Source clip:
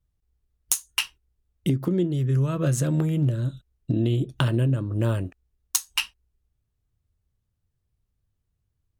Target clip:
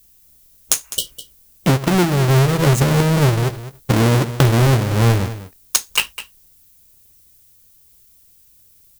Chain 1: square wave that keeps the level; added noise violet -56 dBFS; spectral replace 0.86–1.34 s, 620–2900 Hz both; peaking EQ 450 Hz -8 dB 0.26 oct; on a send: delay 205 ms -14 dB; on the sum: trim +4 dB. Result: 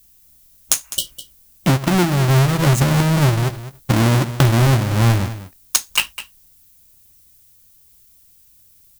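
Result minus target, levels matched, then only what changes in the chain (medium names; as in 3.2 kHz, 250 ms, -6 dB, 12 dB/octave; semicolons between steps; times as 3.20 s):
500 Hz band -3.0 dB
change: peaking EQ 450 Hz +3 dB 0.26 oct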